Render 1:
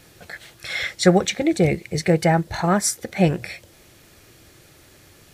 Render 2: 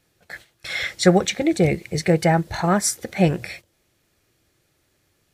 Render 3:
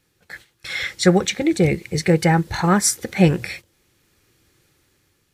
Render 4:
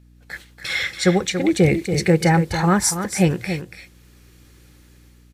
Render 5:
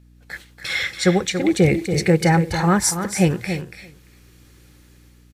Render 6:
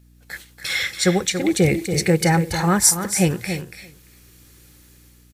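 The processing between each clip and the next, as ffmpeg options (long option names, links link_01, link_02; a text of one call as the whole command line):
ffmpeg -i in.wav -af "agate=range=-16dB:threshold=-39dB:ratio=16:detection=peak" out.wav
ffmpeg -i in.wav -af "equalizer=frequency=650:width=6.3:gain=-13.5,dynaudnorm=framelen=420:gausssize=5:maxgain=9dB" out.wav
ffmpeg -i in.wav -af "dynaudnorm=framelen=130:gausssize=5:maxgain=9dB,aecho=1:1:283:0.355,aeval=exprs='val(0)+0.00501*(sin(2*PI*60*n/s)+sin(2*PI*2*60*n/s)/2+sin(2*PI*3*60*n/s)/3+sin(2*PI*4*60*n/s)/4+sin(2*PI*5*60*n/s)/5)':channel_layout=same,volume=-3dB" out.wav
ffmpeg -i in.wav -af "aecho=1:1:343:0.0944" out.wav
ffmpeg -i in.wav -af "crystalizer=i=1.5:c=0,volume=-1.5dB" out.wav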